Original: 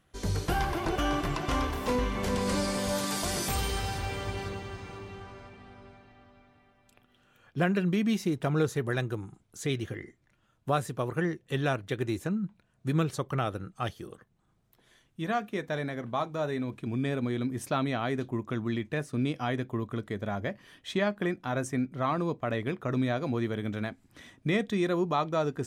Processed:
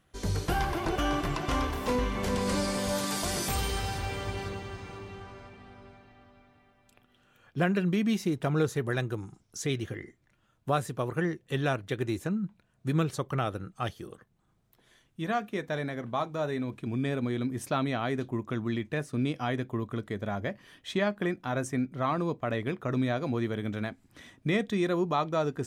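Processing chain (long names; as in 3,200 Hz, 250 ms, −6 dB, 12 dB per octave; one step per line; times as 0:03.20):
0:09.18–0:09.62: parametric band 5,500 Hz +13 dB 0.41 octaves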